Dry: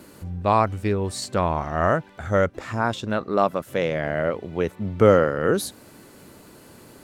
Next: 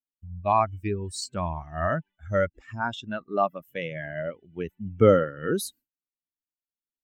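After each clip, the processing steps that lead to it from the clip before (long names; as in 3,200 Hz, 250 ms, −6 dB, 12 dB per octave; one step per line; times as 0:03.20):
spectral dynamics exaggerated over time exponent 2
downward expander −44 dBFS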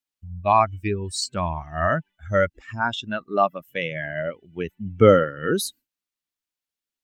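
parametric band 3,300 Hz +5 dB 2.6 octaves
level +3 dB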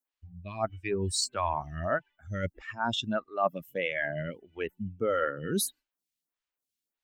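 reversed playback
downward compressor 16 to 1, threshold −24 dBFS, peak gain reduction 17 dB
reversed playback
phaser with staggered stages 1.6 Hz
level +2 dB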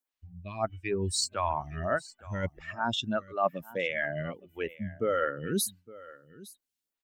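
single-tap delay 862 ms −19.5 dB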